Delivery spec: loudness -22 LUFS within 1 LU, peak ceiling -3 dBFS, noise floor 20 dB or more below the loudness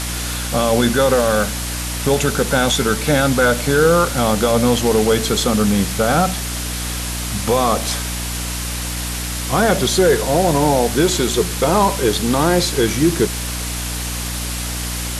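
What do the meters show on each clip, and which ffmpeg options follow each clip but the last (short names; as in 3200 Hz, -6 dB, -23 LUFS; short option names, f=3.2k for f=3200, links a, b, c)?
hum 60 Hz; harmonics up to 300 Hz; hum level -24 dBFS; noise floor -24 dBFS; noise floor target -38 dBFS; loudness -17.5 LUFS; peak -2.0 dBFS; loudness target -22.0 LUFS
-> -af "bandreject=f=60:t=h:w=4,bandreject=f=120:t=h:w=4,bandreject=f=180:t=h:w=4,bandreject=f=240:t=h:w=4,bandreject=f=300:t=h:w=4"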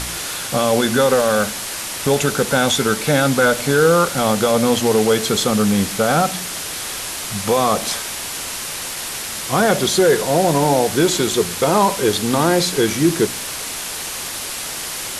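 hum none; noise floor -28 dBFS; noise floor target -38 dBFS
-> -af "afftdn=nr=10:nf=-28"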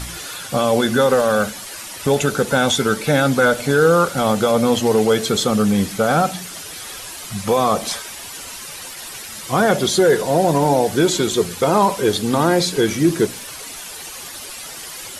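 noise floor -34 dBFS; noise floor target -38 dBFS
-> -af "afftdn=nr=6:nf=-34"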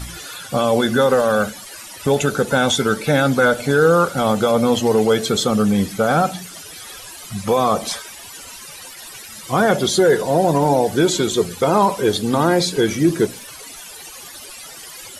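noise floor -37 dBFS; noise floor target -38 dBFS
-> -af "afftdn=nr=6:nf=-37"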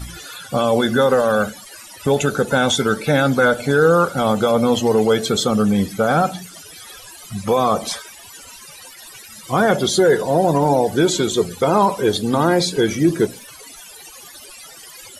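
noise floor -40 dBFS; loudness -17.5 LUFS; peak -3.5 dBFS; loudness target -22.0 LUFS
-> -af "volume=-4.5dB"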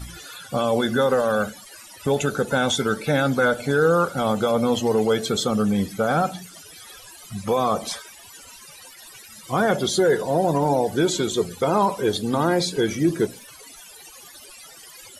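loudness -22.0 LUFS; peak -8.0 dBFS; noise floor -45 dBFS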